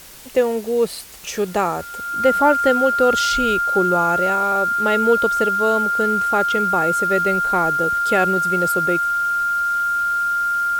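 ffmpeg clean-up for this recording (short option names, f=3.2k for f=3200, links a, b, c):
-af "bandreject=f=1.4k:w=30,afwtdn=0.0089"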